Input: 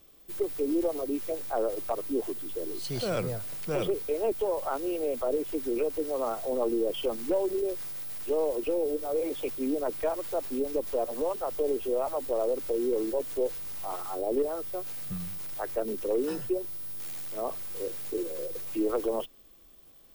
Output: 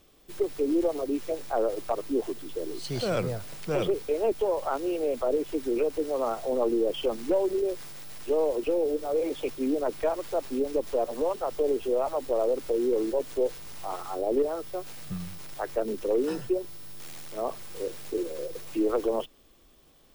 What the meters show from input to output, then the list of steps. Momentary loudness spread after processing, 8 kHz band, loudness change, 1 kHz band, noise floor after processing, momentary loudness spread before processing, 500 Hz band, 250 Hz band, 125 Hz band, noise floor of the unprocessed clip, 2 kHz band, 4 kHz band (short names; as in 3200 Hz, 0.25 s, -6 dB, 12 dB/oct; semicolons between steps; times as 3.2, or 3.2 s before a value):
10 LU, -0.5 dB, +1.0 dB, +2.5 dB, -58 dBFS, 5 LU, +2.5 dB, +2.5 dB, +2.5 dB, -54 dBFS, +2.5 dB, +2.0 dB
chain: high shelf 11000 Hz -9.5 dB; gain +2.5 dB